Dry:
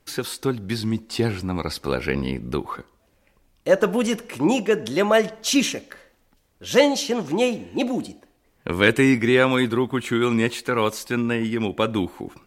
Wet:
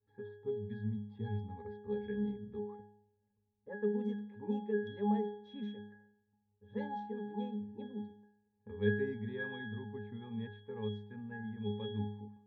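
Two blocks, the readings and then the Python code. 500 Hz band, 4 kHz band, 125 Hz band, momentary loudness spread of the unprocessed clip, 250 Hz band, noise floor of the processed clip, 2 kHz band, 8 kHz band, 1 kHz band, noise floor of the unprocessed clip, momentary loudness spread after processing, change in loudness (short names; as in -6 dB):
-17.5 dB, -27.0 dB, -12.5 dB, 12 LU, -16.0 dB, -79 dBFS, -21.5 dB, under -40 dB, -18.0 dB, -64 dBFS, 11 LU, -17.5 dB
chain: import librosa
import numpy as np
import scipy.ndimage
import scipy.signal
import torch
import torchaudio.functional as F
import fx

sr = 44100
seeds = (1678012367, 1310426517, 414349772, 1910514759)

y = fx.octave_resonator(x, sr, note='G#', decay_s=0.72)
y = fx.env_lowpass(y, sr, base_hz=1200.0, full_db=-31.5)
y = F.gain(torch.from_numpy(y), 1.5).numpy()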